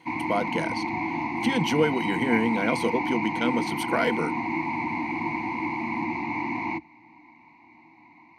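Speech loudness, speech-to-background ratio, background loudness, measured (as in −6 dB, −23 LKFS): −27.5 LKFS, 1.0 dB, −28.5 LKFS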